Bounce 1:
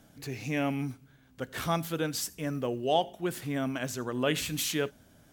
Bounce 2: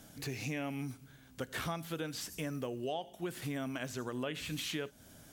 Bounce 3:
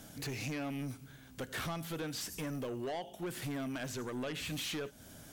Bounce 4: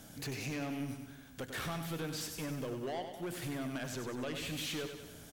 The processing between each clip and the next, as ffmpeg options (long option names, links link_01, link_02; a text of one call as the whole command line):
ffmpeg -i in.wav -filter_complex "[0:a]acrossover=split=3600[link_01][link_02];[link_02]acompressor=threshold=-49dB:ratio=4:attack=1:release=60[link_03];[link_01][link_03]amix=inputs=2:normalize=0,equalizer=frequency=10000:width=0.32:gain=7,acompressor=threshold=-37dB:ratio=6,volume=1.5dB" out.wav
ffmpeg -i in.wav -af "asoftclip=type=tanh:threshold=-37.5dB,volume=3.5dB" out.wav
ffmpeg -i in.wav -af "aecho=1:1:97|194|291|388|485|582|679:0.398|0.227|0.129|0.0737|0.042|0.024|0.0137,volume=-1dB" out.wav